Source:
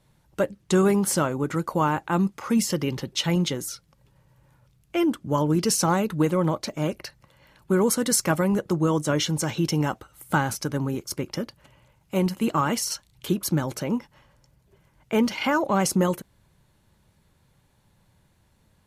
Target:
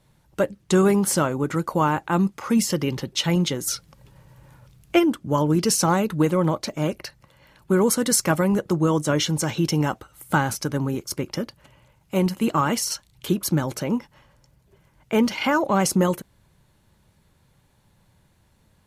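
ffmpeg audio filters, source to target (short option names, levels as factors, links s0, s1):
-filter_complex "[0:a]asplit=3[s0][s1][s2];[s0]afade=t=out:st=3.66:d=0.02[s3];[s1]acontrast=88,afade=t=in:st=3.66:d=0.02,afade=t=out:st=4.98:d=0.02[s4];[s2]afade=t=in:st=4.98:d=0.02[s5];[s3][s4][s5]amix=inputs=3:normalize=0,volume=1.26"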